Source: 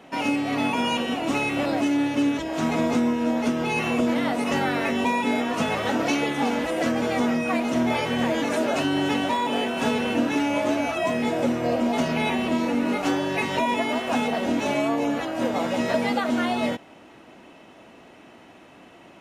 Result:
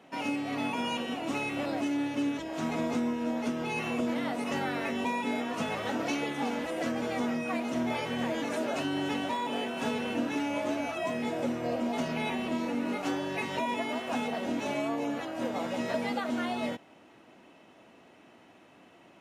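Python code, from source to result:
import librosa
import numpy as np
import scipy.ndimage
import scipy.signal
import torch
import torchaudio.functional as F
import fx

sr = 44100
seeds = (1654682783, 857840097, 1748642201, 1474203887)

y = scipy.signal.sosfilt(scipy.signal.butter(2, 74.0, 'highpass', fs=sr, output='sos'), x)
y = y * librosa.db_to_amplitude(-8.0)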